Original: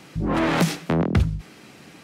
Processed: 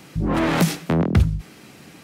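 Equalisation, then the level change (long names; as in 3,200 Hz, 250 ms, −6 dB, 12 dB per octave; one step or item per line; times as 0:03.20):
low-shelf EQ 210 Hz +4 dB
high-shelf EQ 11,000 Hz +10 dB
0.0 dB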